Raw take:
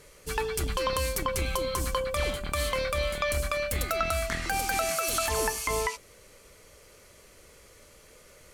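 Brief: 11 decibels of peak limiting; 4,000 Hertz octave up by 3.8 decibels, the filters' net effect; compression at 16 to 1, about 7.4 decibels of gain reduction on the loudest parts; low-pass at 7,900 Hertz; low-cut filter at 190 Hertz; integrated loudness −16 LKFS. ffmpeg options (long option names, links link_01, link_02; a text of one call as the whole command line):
ffmpeg -i in.wav -af "highpass=190,lowpass=7900,equalizer=frequency=4000:width_type=o:gain=5,acompressor=threshold=-31dB:ratio=16,volume=20dB,alimiter=limit=-7dB:level=0:latency=1" out.wav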